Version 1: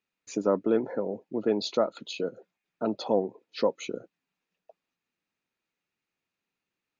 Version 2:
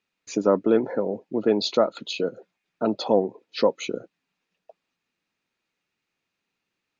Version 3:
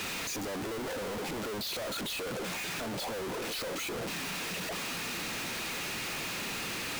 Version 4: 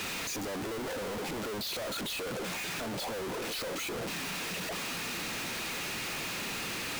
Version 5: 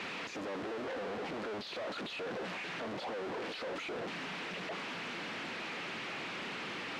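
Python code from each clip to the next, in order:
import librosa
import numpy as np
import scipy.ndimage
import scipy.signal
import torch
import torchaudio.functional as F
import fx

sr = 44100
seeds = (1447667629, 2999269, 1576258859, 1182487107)

y1 = scipy.signal.sosfilt(scipy.signal.butter(2, 5700.0, 'lowpass', fs=sr, output='sos'), x)
y1 = fx.high_shelf(y1, sr, hz=4200.0, db=5.5)
y1 = y1 * librosa.db_to_amplitude(5.0)
y2 = np.sign(y1) * np.sqrt(np.mean(np.square(y1)))
y2 = y2 * librosa.db_to_amplitude(-9.0)
y3 = y2
y4 = fx.bandpass_edges(y3, sr, low_hz=170.0, high_hz=3000.0)
y4 = fx.doppler_dist(y4, sr, depth_ms=0.49)
y4 = y4 * librosa.db_to_amplitude(-2.0)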